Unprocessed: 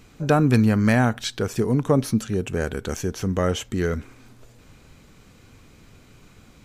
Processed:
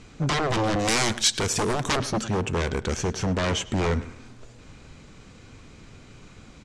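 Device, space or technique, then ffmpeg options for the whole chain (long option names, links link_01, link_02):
synthesiser wavefolder: -filter_complex "[0:a]aeval=exprs='0.0794*(abs(mod(val(0)/0.0794+3,4)-2)-1)':channel_layout=same,lowpass=frequency=8200:width=0.5412,lowpass=frequency=8200:width=1.3066,asettb=1/sr,asplit=3[link_01][link_02][link_03];[link_01]atrim=end=0.794[link_04];[link_02]atrim=start=0.79:end=1.97,asetpts=PTS-STARTPTS,afade=type=in:duration=0.004:curve=qsin,afade=type=out:start_time=1.176:duration=0.004:curve=qsin,aemphasis=mode=production:type=75fm[link_05];[link_03]atrim=start=1.966[link_06];[link_04][link_05]acrossfade=duration=0.004:curve1=hsin:curve2=qsin[link_07];[link_07][link_06]acrossfade=duration=0.004:curve1=qsin:curve2=hsin,asplit=2[link_08][link_09];[link_09]adelay=105,lowpass=frequency=3100:poles=1,volume=-16dB,asplit=2[link_10][link_11];[link_11]adelay=105,lowpass=frequency=3100:poles=1,volume=0.32,asplit=2[link_12][link_13];[link_13]adelay=105,lowpass=frequency=3100:poles=1,volume=0.32[link_14];[link_08][link_10][link_12][link_14]amix=inputs=4:normalize=0,volume=3dB"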